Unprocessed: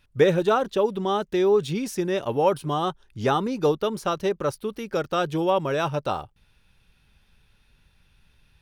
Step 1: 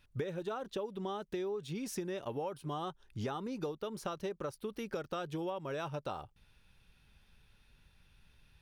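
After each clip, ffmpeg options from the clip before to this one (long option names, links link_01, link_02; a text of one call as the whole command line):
ffmpeg -i in.wav -af "acompressor=threshold=-31dB:ratio=12,volume=-4dB" out.wav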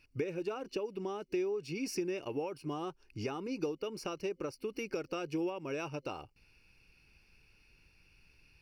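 ffmpeg -i in.wav -af "superequalizer=6b=2.51:7b=1.78:12b=3.16:13b=0.447:14b=2.82,volume=-2.5dB" out.wav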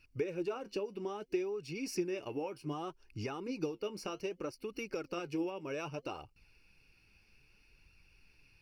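ffmpeg -i in.wav -af "flanger=delay=0.7:depth=9.4:regen=58:speed=0.63:shape=sinusoidal,volume=3dB" out.wav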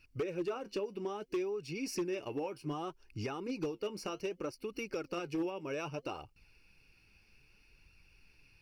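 ffmpeg -i in.wav -af "volume=30.5dB,asoftclip=hard,volume=-30.5dB,volume=1dB" out.wav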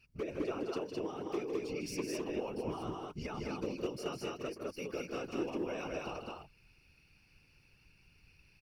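ffmpeg -i in.wav -af "afftfilt=real='hypot(re,im)*cos(2*PI*random(0))':imag='hypot(re,im)*sin(2*PI*random(1))':win_size=512:overlap=0.75,aecho=1:1:157.4|209.9:0.398|0.794,volume=3dB" out.wav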